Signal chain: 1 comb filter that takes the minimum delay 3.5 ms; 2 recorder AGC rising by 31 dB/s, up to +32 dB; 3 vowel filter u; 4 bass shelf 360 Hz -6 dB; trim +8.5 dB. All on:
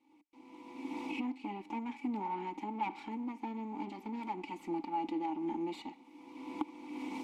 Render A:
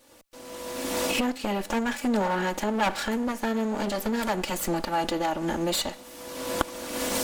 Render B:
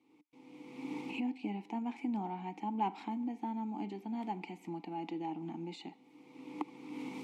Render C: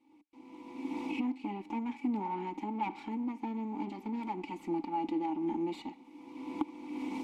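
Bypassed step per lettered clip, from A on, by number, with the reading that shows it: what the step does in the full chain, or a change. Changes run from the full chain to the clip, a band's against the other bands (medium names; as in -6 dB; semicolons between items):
3, 1 kHz band -8.0 dB; 1, 125 Hz band +7.0 dB; 4, 125 Hz band +3.5 dB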